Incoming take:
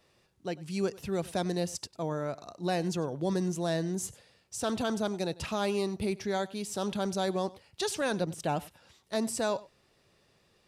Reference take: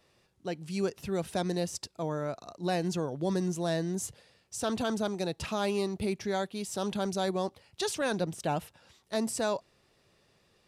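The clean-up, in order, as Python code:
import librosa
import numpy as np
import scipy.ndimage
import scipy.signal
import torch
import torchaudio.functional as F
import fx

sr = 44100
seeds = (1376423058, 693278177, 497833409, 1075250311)

y = fx.fix_echo_inverse(x, sr, delay_ms=97, level_db=-21.0)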